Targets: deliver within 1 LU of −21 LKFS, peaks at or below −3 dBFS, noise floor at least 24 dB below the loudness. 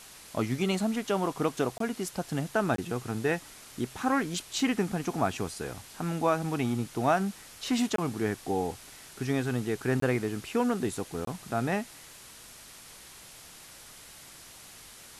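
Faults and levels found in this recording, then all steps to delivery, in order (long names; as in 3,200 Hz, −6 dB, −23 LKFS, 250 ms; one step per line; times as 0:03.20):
number of dropouts 5; longest dropout 23 ms; background noise floor −50 dBFS; target noise floor −55 dBFS; integrated loudness −30.5 LKFS; sample peak −13.5 dBFS; target loudness −21.0 LKFS
→ repair the gap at 0:01.78/0:02.76/0:07.96/0:10.00/0:11.25, 23 ms
noise reduction from a noise print 6 dB
level +9.5 dB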